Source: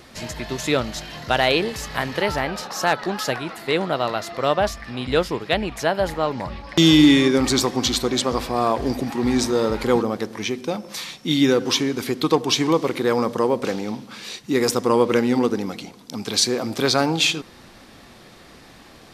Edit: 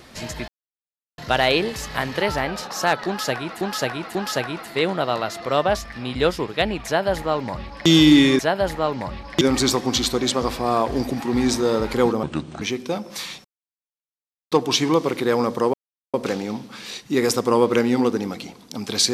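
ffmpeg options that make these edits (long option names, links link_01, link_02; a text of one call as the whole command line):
ffmpeg -i in.wav -filter_complex "[0:a]asplit=12[link_01][link_02][link_03][link_04][link_05][link_06][link_07][link_08][link_09][link_10][link_11][link_12];[link_01]atrim=end=0.48,asetpts=PTS-STARTPTS,afade=type=out:start_time=0.476:duration=0.004:curve=hsin[link_13];[link_02]atrim=start=0.48:end=1.18,asetpts=PTS-STARTPTS,volume=0[link_14];[link_03]atrim=start=1.18:end=3.612,asetpts=PTS-STARTPTS,afade=type=in:duration=0.004:curve=hsin[link_15];[link_04]atrim=start=3.068:end=3.612[link_16];[link_05]atrim=start=3.068:end=7.312[link_17];[link_06]atrim=start=5.778:end=6.802[link_18];[link_07]atrim=start=7.308:end=10.134[link_19];[link_08]atrim=start=10.13:end=10.4,asetpts=PTS-STARTPTS,asetrate=30870,aresample=44100[link_20];[link_09]atrim=start=10.396:end=11.23,asetpts=PTS-STARTPTS,afade=type=out:start_time=0.83:duration=0.004:curve=hsin[link_21];[link_10]atrim=start=11.23:end=12.3,asetpts=PTS-STARTPTS,volume=0[link_22];[link_11]atrim=start=12.3:end=13.52,asetpts=PTS-STARTPTS,afade=type=in:duration=0.004:curve=hsin,afade=type=out:start_time=1.216:duration=0.004:curve=hsin,apad=pad_dur=0.4[link_23];[link_12]atrim=start=13.52,asetpts=PTS-STARTPTS,afade=type=in:duration=0.004:curve=hsin[link_24];[link_13][link_14][link_15]concat=n=3:v=0:a=1[link_25];[link_25][link_16]acrossfade=duration=0.004:curve1=hsin:curve2=hsin[link_26];[link_26][link_17]acrossfade=duration=0.004:curve1=hsin:curve2=hsin[link_27];[link_27][link_18]acrossfade=duration=0.004:curve1=hsin:curve2=hsin[link_28];[link_28][link_19]acrossfade=duration=0.004:curve1=hsin:curve2=hsin[link_29];[link_29][link_20]acrossfade=duration=0.004:curve1=hsin:curve2=hsin[link_30];[link_21][link_22][link_23][link_24]concat=n=4:v=0:a=1[link_31];[link_30][link_31]acrossfade=duration=0.004:curve1=hsin:curve2=hsin" out.wav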